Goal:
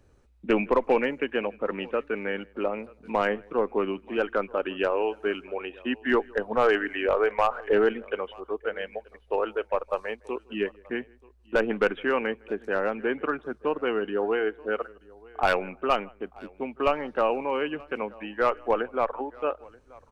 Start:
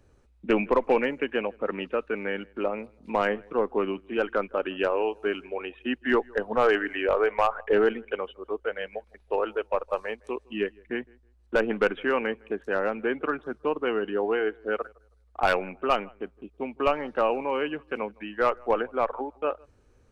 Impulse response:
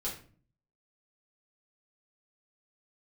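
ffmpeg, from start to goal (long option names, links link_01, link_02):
-af "aecho=1:1:931:0.0631"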